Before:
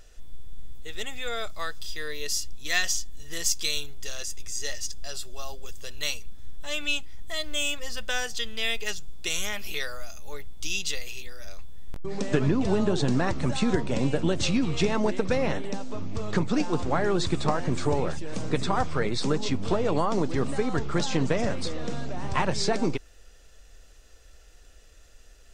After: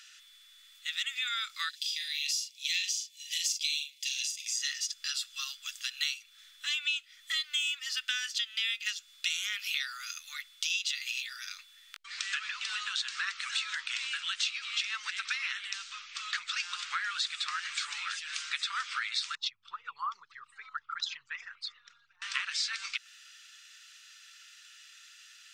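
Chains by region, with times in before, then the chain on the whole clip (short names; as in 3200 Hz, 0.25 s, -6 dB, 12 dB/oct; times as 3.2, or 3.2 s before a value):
1.69–4.54 Chebyshev high-pass 2300 Hz, order 4 + doubler 42 ms -6 dB
19.35–22.22 formant sharpening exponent 2 + bell 940 Hz +6 dB 1.2 oct
whole clip: elliptic high-pass 1300 Hz, stop band 50 dB; bell 3200 Hz +11 dB 2.2 oct; compressor 4:1, threshold -31 dBFS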